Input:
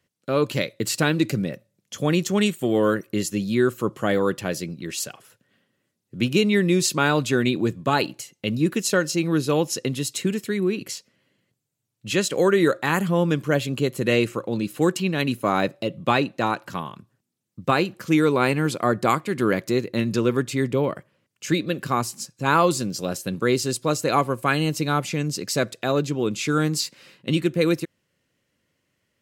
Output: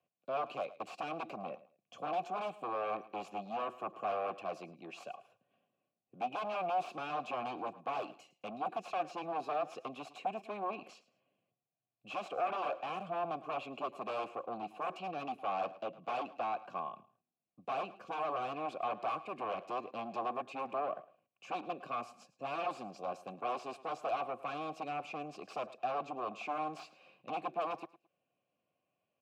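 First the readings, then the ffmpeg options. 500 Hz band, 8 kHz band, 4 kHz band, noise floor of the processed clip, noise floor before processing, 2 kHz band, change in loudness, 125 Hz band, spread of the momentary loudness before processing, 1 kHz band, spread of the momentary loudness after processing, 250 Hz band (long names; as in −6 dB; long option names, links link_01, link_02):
−16.5 dB, below −30 dB, −22.0 dB, below −85 dBFS, −76 dBFS, −20.0 dB, −16.5 dB, −31.0 dB, 9 LU, −8.5 dB, 9 LU, −26.0 dB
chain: -filter_complex "[0:a]bass=frequency=250:gain=11,treble=frequency=4000:gain=4,bandreject=frequency=1300:width=6.5,acrossover=split=210[link_01][link_02];[link_01]acompressor=threshold=-44dB:ratio=6[link_03];[link_02]aeval=exprs='0.0891*(abs(mod(val(0)/0.0891+3,4)-2)-1)':channel_layout=same[link_04];[link_03][link_04]amix=inputs=2:normalize=0,highpass=94,aecho=1:1:108|216:0.106|0.0254,asoftclip=type=tanh:threshold=-22.5dB,asplit=3[link_05][link_06][link_07];[link_05]bandpass=frequency=730:width_type=q:width=8,volume=0dB[link_08];[link_06]bandpass=frequency=1090:width_type=q:width=8,volume=-6dB[link_09];[link_07]bandpass=frequency=2440:width_type=q:width=8,volume=-9dB[link_10];[link_08][link_09][link_10]amix=inputs=3:normalize=0,highshelf=frequency=3500:gain=-10.5,volume=4dB"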